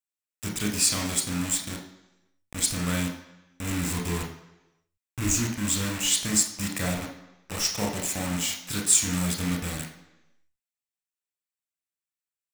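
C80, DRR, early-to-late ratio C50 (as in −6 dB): 10.5 dB, 1.0 dB, 7.0 dB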